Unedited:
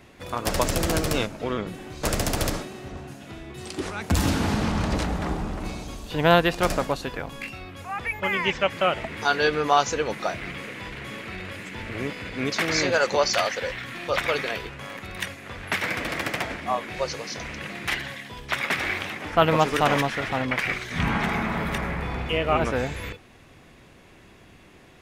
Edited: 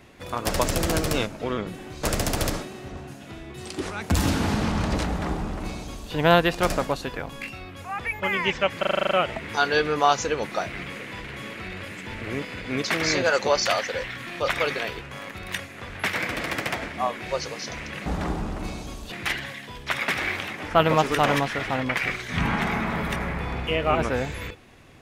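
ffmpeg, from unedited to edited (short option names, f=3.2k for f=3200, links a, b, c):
-filter_complex "[0:a]asplit=11[a][b][c][d][e][f][g][h][i][j][k];[a]atrim=end=8.832[l];[b]atrim=start=8.788:end=8.832[m];[c]atrim=start=8.788:end=8.832[n];[d]atrim=start=8.788:end=8.832[o];[e]atrim=start=8.788:end=8.832[p];[f]atrim=start=8.788:end=8.832[q];[g]atrim=start=8.788:end=8.832[r];[h]atrim=start=8.788:end=8.832[s];[i]atrim=start=8.788:end=17.742[t];[j]atrim=start=5.068:end=6.132[u];[k]atrim=start=17.738[v];[l][m]acrossfade=d=0.004:c1=hsin:c2=hsin[w];[w][n]acrossfade=d=0.004:c1=hsin:c2=hsin[x];[x][o]acrossfade=d=0.004:c1=hsin:c2=hsin[y];[y][p]acrossfade=d=0.004:c1=hsin:c2=hsin[z];[z][q]acrossfade=d=0.004:c1=hsin:c2=hsin[aa];[aa][r]acrossfade=d=0.004:c1=hsin:c2=hsin[ab];[ab][s]acrossfade=d=0.004:c1=hsin:c2=hsin[ac];[ac][t]acrossfade=d=0.004:c1=hsin:c2=hsin[ad];[ad][u]acrossfade=d=0.004:c1=hsin:c2=hsin[ae];[ae][v]acrossfade=d=0.004:c1=hsin:c2=hsin"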